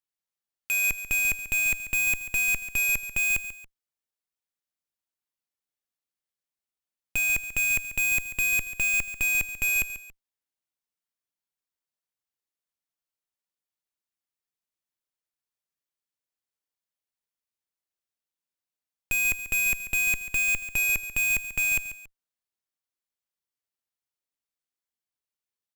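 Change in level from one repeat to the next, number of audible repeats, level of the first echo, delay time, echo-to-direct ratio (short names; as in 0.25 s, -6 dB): -7.5 dB, 2, -13.5 dB, 0.14 s, -13.0 dB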